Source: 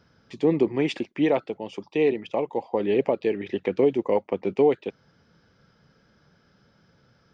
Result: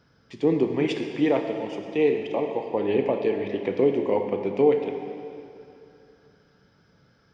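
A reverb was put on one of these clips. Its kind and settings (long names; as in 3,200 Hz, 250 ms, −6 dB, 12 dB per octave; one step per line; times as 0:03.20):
dense smooth reverb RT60 2.7 s, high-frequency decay 0.95×, DRR 4 dB
level −1.5 dB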